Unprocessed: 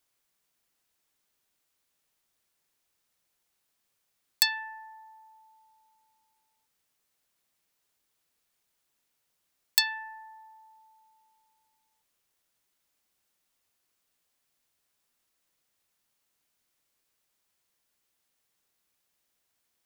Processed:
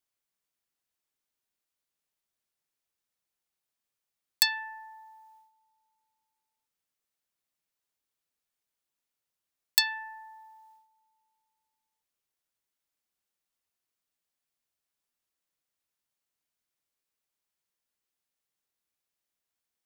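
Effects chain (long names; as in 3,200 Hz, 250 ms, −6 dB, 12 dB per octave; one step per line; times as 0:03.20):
noise gate −59 dBFS, range −10 dB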